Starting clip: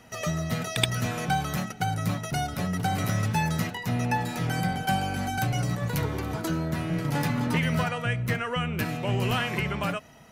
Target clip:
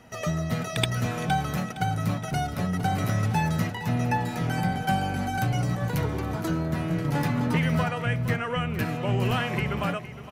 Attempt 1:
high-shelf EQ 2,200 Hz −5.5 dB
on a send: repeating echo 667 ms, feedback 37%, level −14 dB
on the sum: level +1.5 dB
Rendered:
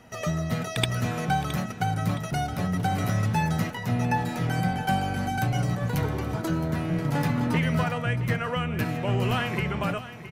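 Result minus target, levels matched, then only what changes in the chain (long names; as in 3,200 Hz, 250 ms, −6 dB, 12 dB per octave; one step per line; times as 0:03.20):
echo 204 ms late
change: repeating echo 463 ms, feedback 37%, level −14 dB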